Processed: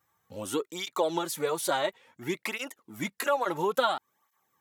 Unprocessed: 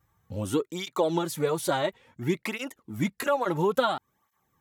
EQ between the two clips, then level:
high-pass filter 1,000 Hz 6 dB per octave
tilt shelving filter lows +5.5 dB, about 1,400 Hz
high-shelf EQ 2,400 Hz +7.5 dB
0.0 dB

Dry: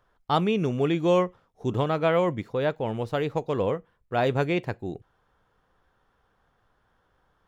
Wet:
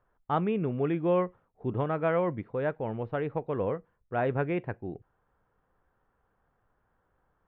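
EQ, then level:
low-pass filter 2,700 Hz 24 dB per octave
dynamic equaliser 1,600 Hz, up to +4 dB, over −41 dBFS, Q 2.2
high-shelf EQ 2,100 Hz −8 dB
−4.0 dB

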